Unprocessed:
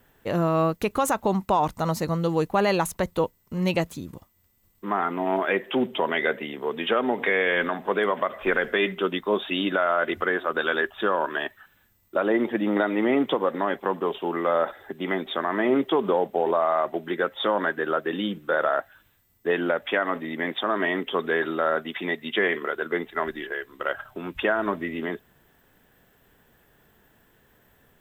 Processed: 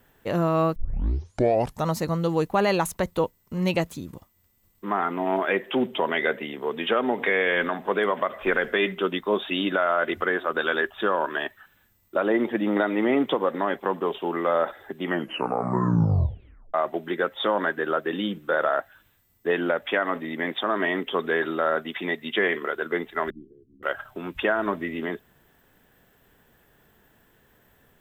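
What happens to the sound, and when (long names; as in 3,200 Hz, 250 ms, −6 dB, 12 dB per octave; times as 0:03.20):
0:00.76: tape start 1.11 s
0:15.02: tape stop 1.72 s
0:23.30–0:23.83: inverse Chebyshev low-pass filter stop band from 680 Hz, stop band 50 dB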